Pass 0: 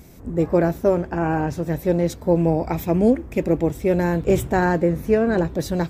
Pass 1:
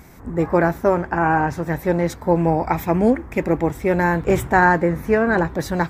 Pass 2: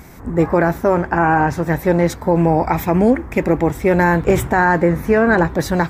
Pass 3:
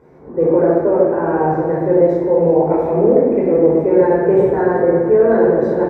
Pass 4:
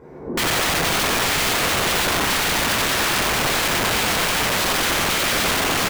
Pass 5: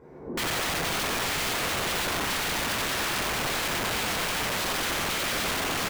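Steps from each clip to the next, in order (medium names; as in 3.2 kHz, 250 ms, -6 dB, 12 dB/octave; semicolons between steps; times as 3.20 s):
high-order bell 1.3 kHz +9 dB
peak limiter -9 dBFS, peak gain reduction 7 dB; trim +5 dB
band-pass filter 440 Hz, Q 2.4; delay 372 ms -13 dB; reverberation RT60 1.4 s, pre-delay 14 ms, DRR -6 dB; trim -2.5 dB
compression 12:1, threshold -15 dBFS, peak gain reduction 9.5 dB; integer overflow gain 21.5 dB; delay 94 ms -5.5 dB; trim +5 dB
saturation -14 dBFS, distortion -22 dB; trim -7 dB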